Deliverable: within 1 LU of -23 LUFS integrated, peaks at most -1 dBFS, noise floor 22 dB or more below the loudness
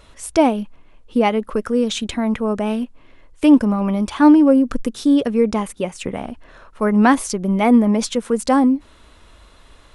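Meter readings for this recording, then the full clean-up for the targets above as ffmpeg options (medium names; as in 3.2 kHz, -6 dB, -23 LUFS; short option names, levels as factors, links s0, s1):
loudness -17.5 LUFS; peak level -1.5 dBFS; loudness target -23.0 LUFS
-> -af "volume=0.531"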